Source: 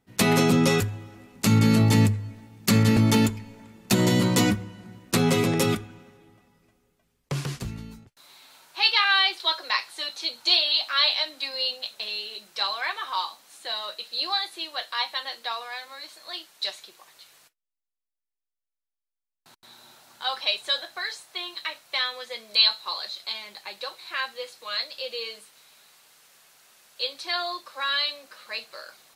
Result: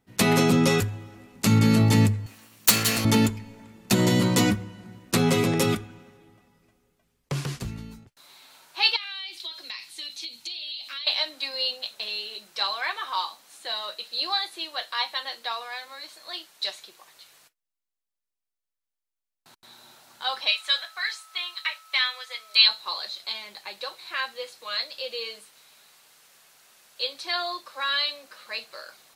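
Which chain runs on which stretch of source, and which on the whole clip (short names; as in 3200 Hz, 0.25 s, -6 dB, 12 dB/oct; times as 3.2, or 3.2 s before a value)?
2.26–3.05 minimum comb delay 0.71 ms + tilt +4 dB/oct + wrapped overs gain 4.5 dB
8.96–11.07 band shelf 820 Hz -12 dB 2.4 oct + compressor 16:1, threshold -31 dBFS
20.48–22.67 HPF 940 Hz + dynamic EQ 2300 Hz, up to +6 dB, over -39 dBFS, Q 1.5 + whine 1300 Hz -51 dBFS
whole clip: dry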